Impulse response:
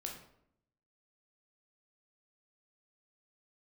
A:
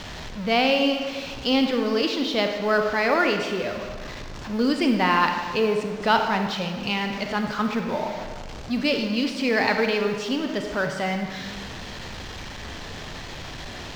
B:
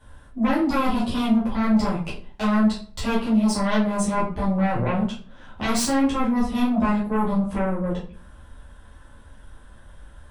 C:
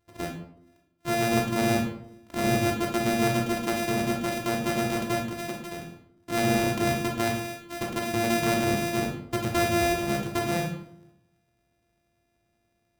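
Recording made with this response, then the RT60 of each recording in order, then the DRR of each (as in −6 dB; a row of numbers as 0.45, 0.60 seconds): C; 1.5, 0.45, 0.70 seconds; 5.0, −9.0, 0.5 decibels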